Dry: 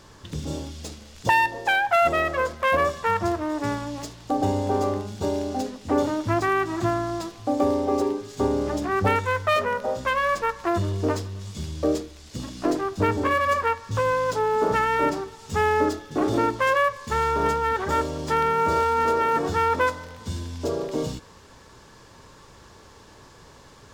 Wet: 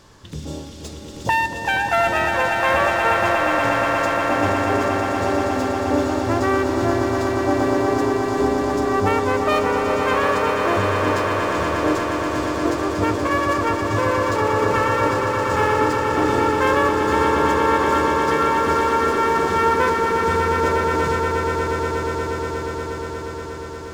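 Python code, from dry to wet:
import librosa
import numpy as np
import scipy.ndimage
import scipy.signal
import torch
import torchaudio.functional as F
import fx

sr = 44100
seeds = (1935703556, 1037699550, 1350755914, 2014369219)

y = fx.echo_swell(x, sr, ms=119, loudest=8, wet_db=-8)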